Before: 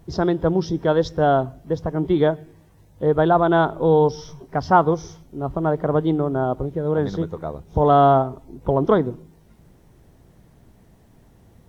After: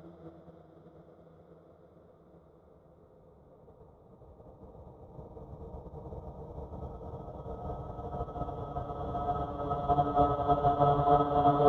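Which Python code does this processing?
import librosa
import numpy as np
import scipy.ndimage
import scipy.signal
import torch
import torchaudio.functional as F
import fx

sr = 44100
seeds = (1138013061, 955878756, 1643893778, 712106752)

y = fx.local_reverse(x, sr, ms=159.0)
y = fx.paulstretch(y, sr, seeds[0], factor=27.0, window_s=0.5, from_s=7.36)
y = fx.upward_expand(y, sr, threshold_db=-30.0, expansion=2.5)
y = y * 10.0 ** (-3.5 / 20.0)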